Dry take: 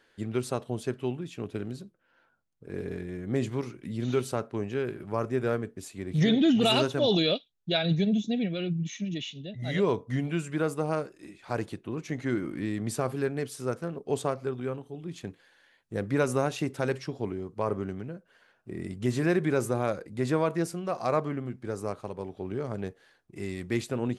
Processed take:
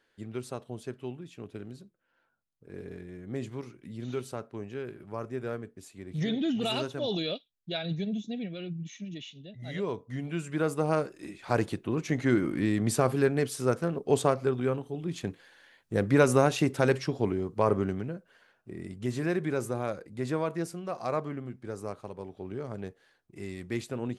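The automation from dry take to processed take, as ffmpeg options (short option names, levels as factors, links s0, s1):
-af "volume=1.68,afade=t=in:st=10.14:d=1.13:silence=0.266073,afade=t=out:st=17.81:d=0.95:silence=0.375837"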